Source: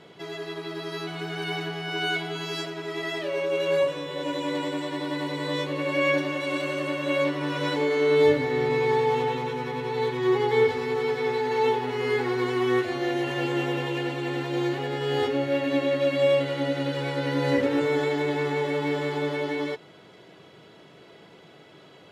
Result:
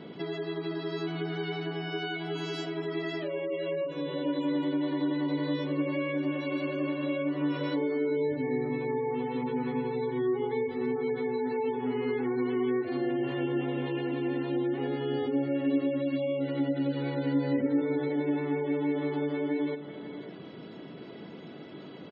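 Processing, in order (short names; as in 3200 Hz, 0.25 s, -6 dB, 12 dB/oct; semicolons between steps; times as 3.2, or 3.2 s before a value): compressor 3:1, threshold -37 dBFS, peak gain reduction 16 dB; on a send: echo 0.544 s -12 dB; on the sum: spectral gate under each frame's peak -25 dB strong; bell 240 Hz +13.5 dB 1.2 oct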